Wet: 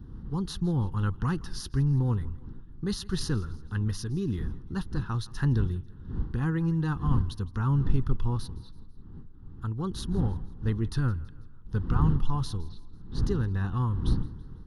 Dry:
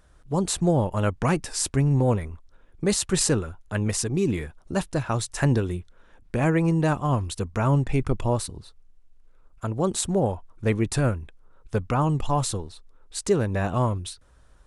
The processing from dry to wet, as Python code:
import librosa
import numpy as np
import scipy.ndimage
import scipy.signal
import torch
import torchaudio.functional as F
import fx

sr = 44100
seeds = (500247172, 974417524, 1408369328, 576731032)

y = fx.dmg_wind(x, sr, seeds[0], corner_hz=240.0, level_db=-34.0)
y = fx.low_shelf(y, sr, hz=100.0, db=11.5)
y = fx.fixed_phaser(y, sr, hz=2300.0, stages=6)
y = fx.air_absorb(y, sr, metres=64.0, at=(12.62, 13.23))
y = fx.echo_feedback(y, sr, ms=165, feedback_pct=48, wet_db=-21.5)
y = y * librosa.db_to_amplitude(-6.5)